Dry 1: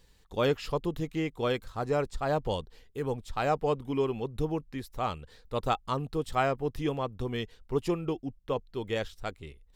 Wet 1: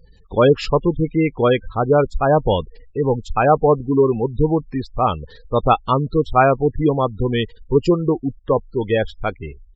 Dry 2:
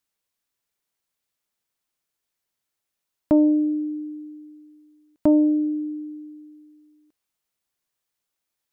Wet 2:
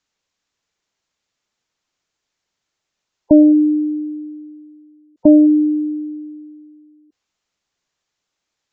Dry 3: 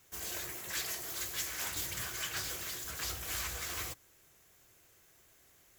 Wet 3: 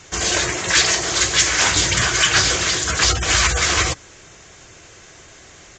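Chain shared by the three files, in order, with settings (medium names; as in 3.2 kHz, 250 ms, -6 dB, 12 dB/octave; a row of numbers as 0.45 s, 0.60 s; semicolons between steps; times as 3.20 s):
spectral gate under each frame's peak -20 dB strong; resampled via 16 kHz; peak normalisation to -1.5 dBFS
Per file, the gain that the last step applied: +14.0 dB, +8.0 dB, +23.5 dB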